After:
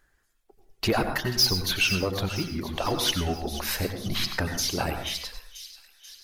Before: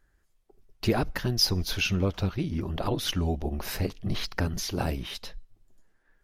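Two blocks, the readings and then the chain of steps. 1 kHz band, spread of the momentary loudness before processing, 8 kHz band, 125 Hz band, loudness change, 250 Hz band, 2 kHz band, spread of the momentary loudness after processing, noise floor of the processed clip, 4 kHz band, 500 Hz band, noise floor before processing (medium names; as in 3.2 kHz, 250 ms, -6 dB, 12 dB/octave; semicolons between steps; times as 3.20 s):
+4.5 dB, 8 LU, +6.0 dB, -2.5 dB, +2.5 dB, -0.5 dB, +5.5 dB, 11 LU, -68 dBFS, +5.0 dB, +2.0 dB, -69 dBFS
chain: reverb removal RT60 1.2 s; bass shelf 450 Hz -8.5 dB; saturation -22 dBFS, distortion -13 dB; on a send: feedback echo behind a high-pass 486 ms, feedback 59%, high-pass 3.5 kHz, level -11 dB; on the sum: plate-style reverb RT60 0.62 s, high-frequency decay 0.5×, pre-delay 80 ms, DRR 6.5 dB; trim +7 dB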